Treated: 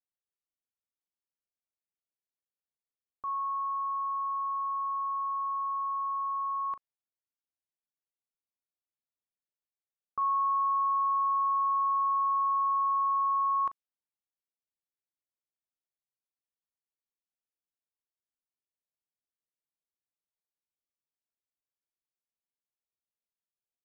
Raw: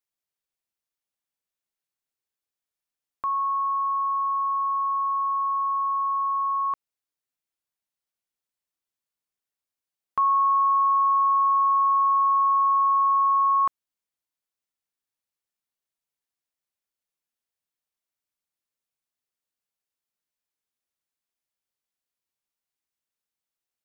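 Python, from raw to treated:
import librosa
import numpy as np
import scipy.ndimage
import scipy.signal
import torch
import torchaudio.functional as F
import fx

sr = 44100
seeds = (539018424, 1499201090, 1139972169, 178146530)

y = fx.doubler(x, sr, ms=39.0, db=-13.5)
y = fx.env_lowpass(y, sr, base_hz=790.0, full_db=-21.5)
y = y * 10.0 ** (-8.5 / 20.0)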